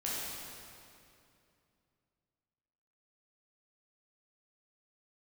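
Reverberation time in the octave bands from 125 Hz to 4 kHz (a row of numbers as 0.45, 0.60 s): 3.3, 3.1, 2.7, 2.5, 2.3, 2.1 s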